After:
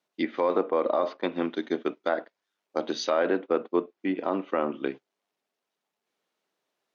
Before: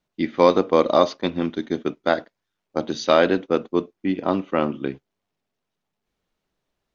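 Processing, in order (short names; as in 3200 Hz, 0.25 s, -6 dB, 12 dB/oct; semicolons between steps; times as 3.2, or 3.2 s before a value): treble ducked by the level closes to 1900 Hz, closed at -17.5 dBFS; HPF 340 Hz 12 dB/oct; limiter -14 dBFS, peak gain reduction 10.5 dB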